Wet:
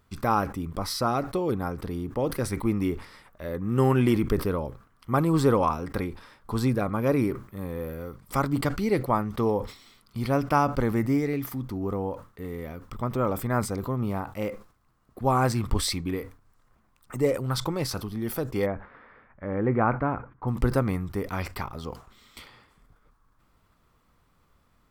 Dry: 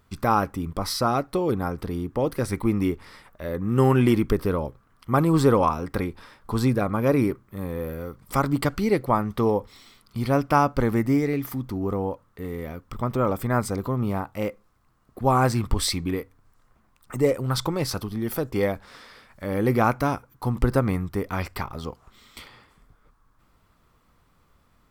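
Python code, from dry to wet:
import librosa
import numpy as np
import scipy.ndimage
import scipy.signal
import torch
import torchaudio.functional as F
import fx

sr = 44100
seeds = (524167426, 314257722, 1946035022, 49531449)

y = fx.lowpass(x, sr, hz=2000.0, slope=24, at=(18.65, 20.47), fade=0.02)
y = fx.sustainer(y, sr, db_per_s=140.0)
y = y * 10.0 ** (-3.0 / 20.0)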